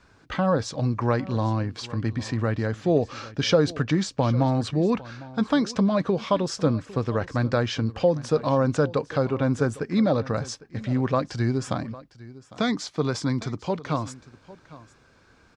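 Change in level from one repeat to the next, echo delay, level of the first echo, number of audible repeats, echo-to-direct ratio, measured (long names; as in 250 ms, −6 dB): repeats not evenly spaced, 804 ms, −19.0 dB, 1, −19.0 dB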